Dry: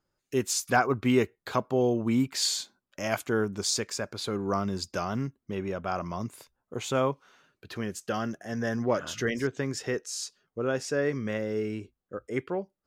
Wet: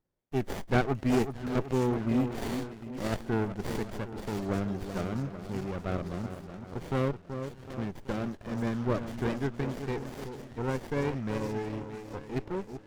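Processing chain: two-band feedback delay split 1.2 kHz, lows 378 ms, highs 623 ms, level -8 dB; sliding maximum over 33 samples; trim -2.5 dB

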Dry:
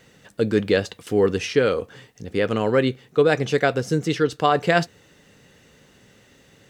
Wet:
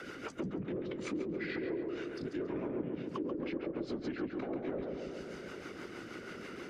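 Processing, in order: single-diode clipper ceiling -17.5 dBFS; high-pass 240 Hz 24 dB/octave; low-pass that closes with the level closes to 500 Hz, closed at -16.5 dBFS; compression 2:1, threshold -32 dBFS, peak gain reduction 9 dB; peak limiter -29 dBFS, peak gain reduction 11.5 dB; whisper effect; formant shift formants -4 st; rotary cabinet horn 6.3 Hz; filtered feedback delay 137 ms, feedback 63%, low-pass 1.6 kHz, level -3 dB; three bands compressed up and down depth 70%

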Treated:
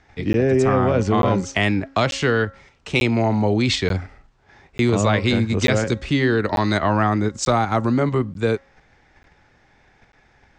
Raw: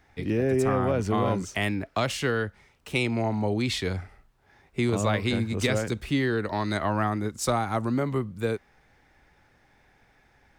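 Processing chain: in parallel at 0 dB: level held to a coarse grid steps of 15 dB; on the sum: steep low-pass 7.6 kHz 36 dB/octave; de-hum 272 Hz, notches 7; crackling interface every 0.89 s, samples 512, zero, from 0.33 s; trim +3.5 dB

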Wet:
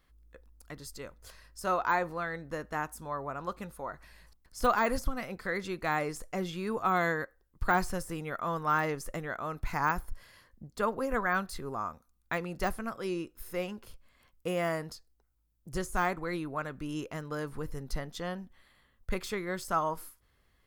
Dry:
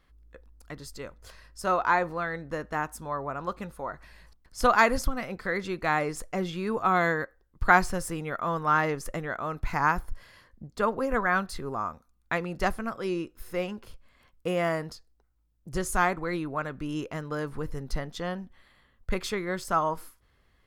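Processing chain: de-esser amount 85%; treble shelf 7.6 kHz +9 dB; trim -4 dB

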